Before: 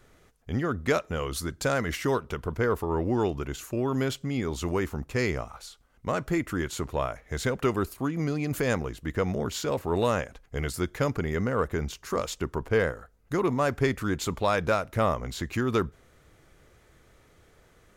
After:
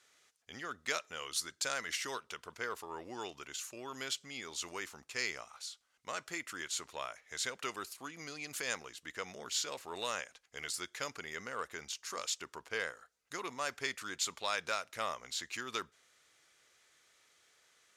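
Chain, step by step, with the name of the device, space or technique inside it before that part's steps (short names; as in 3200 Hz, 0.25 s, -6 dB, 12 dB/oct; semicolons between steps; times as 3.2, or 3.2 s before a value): piezo pickup straight into a mixer (LPF 6000 Hz 12 dB/oct; differentiator); gain +6 dB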